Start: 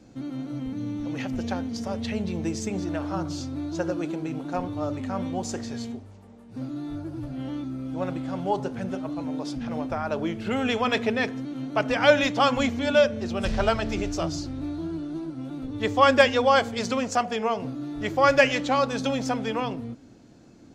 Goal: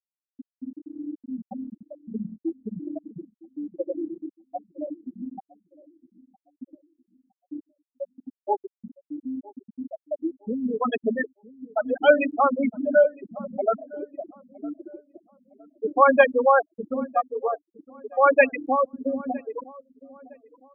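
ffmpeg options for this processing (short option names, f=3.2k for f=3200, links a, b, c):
-filter_complex "[0:a]highpass=110,lowpass=5.1k,afftfilt=real='re*gte(hypot(re,im),0.355)':imag='im*gte(hypot(re,im),0.355)':win_size=1024:overlap=0.75,asplit=2[a][b];[b]adelay=961,lowpass=f=910:p=1,volume=-20dB,asplit=2[c][d];[d]adelay=961,lowpass=f=910:p=1,volume=0.41,asplit=2[e][f];[f]adelay=961,lowpass=f=910:p=1,volume=0.41[g];[a][c][e][g]amix=inputs=4:normalize=0,volume=2.5dB"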